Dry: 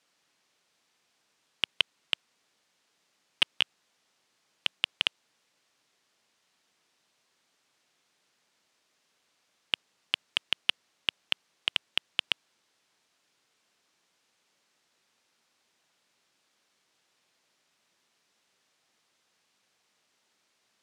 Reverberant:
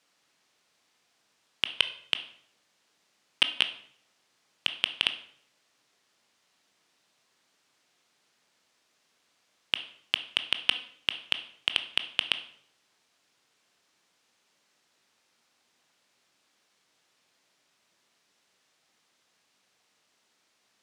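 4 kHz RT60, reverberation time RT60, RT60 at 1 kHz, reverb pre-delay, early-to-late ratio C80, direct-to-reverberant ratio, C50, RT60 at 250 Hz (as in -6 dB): 0.50 s, 0.65 s, 0.60 s, 17 ms, 16.5 dB, 9.0 dB, 13.0 dB, 0.70 s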